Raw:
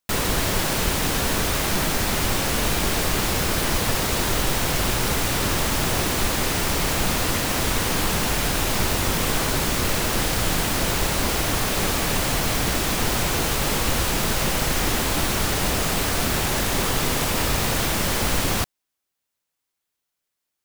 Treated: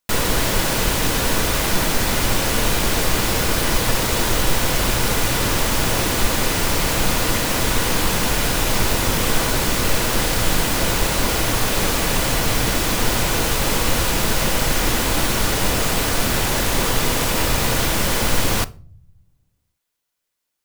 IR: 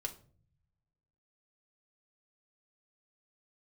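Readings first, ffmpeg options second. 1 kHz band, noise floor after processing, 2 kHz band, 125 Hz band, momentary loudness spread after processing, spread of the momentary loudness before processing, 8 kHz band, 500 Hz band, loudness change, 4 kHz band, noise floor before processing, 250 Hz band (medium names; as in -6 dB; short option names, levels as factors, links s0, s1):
+2.5 dB, -73 dBFS, +3.0 dB, +2.5 dB, 0 LU, 0 LU, +3.0 dB, +3.0 dB, +3.0 dB, +3.0 dB, -81 dBFS, +2.5 dB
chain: -filter_complex "[0:a]asplit=2[s0][s1];[1:a]atrim=start_sample=2205[s2];[s1][s2]afir=irnorm=-1:irlink=0,volume=0.531[s3];[s0][s3]amix=inputs=2:normalize=0"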